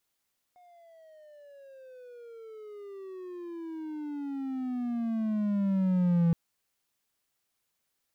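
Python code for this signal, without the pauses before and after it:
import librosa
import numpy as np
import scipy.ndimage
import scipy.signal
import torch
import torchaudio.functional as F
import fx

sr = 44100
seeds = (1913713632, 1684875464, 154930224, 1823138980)

y = fx.riser_tone(sr, length_s=5.77, level_db=-18.5, wave='triangle', hz=724.0, rise_st=-25.5, swell_db=34)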